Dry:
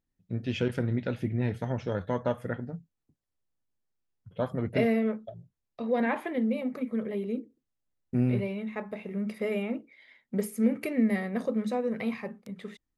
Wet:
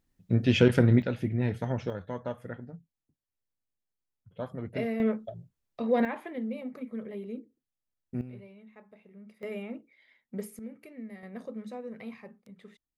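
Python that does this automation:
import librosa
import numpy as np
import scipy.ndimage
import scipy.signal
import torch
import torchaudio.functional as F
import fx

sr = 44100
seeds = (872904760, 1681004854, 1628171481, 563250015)

y = fx.gain(x, sr, db=fx.steps((0.0, 8.0), (1.02, 0.5), (1.9, -6.5), (5.0, 2.0), (6.05, -6.5), (8.21, -18.0), (9.43, -7.0), (10.59, -17.5), (11.23, -10.5)))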